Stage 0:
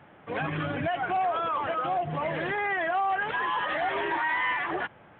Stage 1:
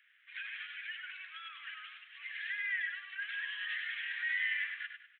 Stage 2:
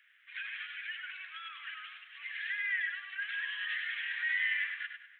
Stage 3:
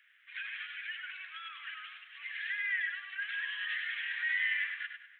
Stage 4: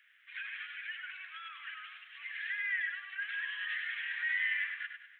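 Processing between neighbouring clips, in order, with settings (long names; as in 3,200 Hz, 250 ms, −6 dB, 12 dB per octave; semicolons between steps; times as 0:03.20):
Butterworth high-pass 1,700 Hz 48 dB per octave; on a send: repeating echo 99 ms, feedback 36%, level −7 dB; on the sum: level −4 dB
parametric band 810 Hz +3 dB 1.4 octaves; on a send at −22 dB: convolution reverb RT60 4.9 s, pre-delay 58 ms; on the sum: level +1.5 dB
no processing that can be heard
dynamic equaliser 3,800 Hz, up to −4 dB, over −52 dBFS, Q 1.3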